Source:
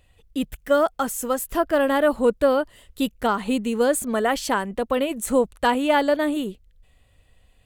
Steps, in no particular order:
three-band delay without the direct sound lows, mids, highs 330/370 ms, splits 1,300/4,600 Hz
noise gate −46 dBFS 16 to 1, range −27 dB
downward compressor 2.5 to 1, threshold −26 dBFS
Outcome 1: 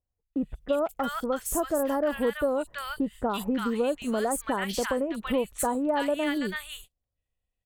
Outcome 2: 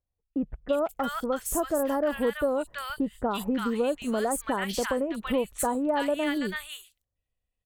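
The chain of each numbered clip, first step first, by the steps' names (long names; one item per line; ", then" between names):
three-band delay without the direct sound, then noise gate, then downward compressor
noise gate, then three-band delay without the direct sound, then downward compressor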